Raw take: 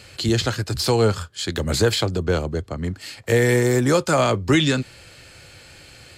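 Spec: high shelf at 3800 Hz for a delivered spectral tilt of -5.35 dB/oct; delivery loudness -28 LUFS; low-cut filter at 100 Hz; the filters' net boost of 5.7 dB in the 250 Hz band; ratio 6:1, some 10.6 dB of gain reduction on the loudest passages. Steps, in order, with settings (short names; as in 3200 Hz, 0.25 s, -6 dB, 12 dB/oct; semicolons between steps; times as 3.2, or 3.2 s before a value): HPF 100 Hz; bell 250 Hz +7.5 dB; high shelf 3800 Hz -3.5 dB; compressor 6:1, threshold -21 dBFS; gain -2 dB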